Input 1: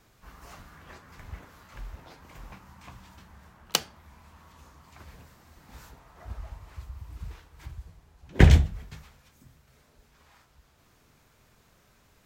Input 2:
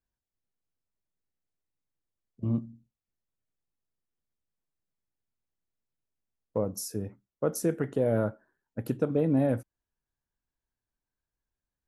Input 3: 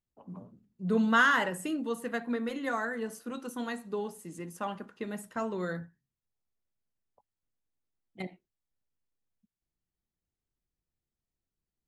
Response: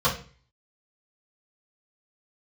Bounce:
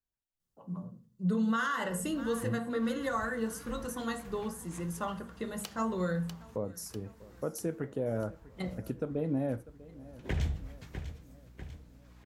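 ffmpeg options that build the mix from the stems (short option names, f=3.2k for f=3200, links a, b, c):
-filter_complex "[0:a]aeval=exprs='val(0)+0.00355*(sin(2*PI*60*n/s)+sin(2*PI*2*60*n/s)/2+sin(2*PI*3*60*n/s)/3+sin(2*PI*4*60*n/s)/4+sin(2*PI*5*60*n/s)/5)':c=same,adelay=1900,volume=-5.5dB,asplit=2[a][b];[b]volume=-20dB[c];[1:a]flanger=delay=7.2:depth=1.1:regen=-84:speed=1.7:shape=triangular,volume=-1.5dB,asplit=3[d][e][f];[e]volume=-20.5dB[g];[2:a]bass=f=250:g=2,treble=f=4k:g=6,bandreject=f=2.4k:w=6.8,adelay=400,volume=-1.5dB,asplit=3[h][i][j];[i]volume=-19.5dB[k];[j]volume=-22.5dB[l];[f]apad=whole_len=624045[m];[a][m]sidechaincompress=threshold=-43dB:ratio=5:attack=5.7:release=420[n];[3:a]atrim=start_sample=2205[o];[k][o]afir=irnorm=-1:irlink=0[p];[c][g][l]amix=inputs=3:normalize=0,aecho=0:1:645|1290|1935|2580|3225|3870|4515|5160|5805:1|0.57|0.325|0.185|0.106|0.0602|0.0343|0.0195|0.0111[q];[n][d][h][p][q]amix=inputs=5:normalize=0,alimiter=limit=-22.5dB:level=0:latency=1:release=170"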